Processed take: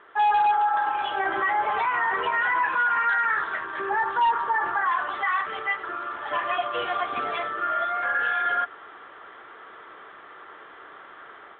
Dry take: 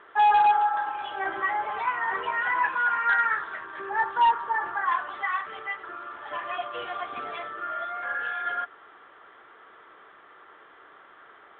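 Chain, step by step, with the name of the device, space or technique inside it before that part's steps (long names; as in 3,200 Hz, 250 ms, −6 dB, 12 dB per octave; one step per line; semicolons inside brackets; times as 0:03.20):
low-bitrate web radio (automatic gain control gain up to 7 dB; brickwall limiter −15.5 dBFS, peak gain reduction 8.5 dB; MP3 48 kbit/s 48,000 Hz)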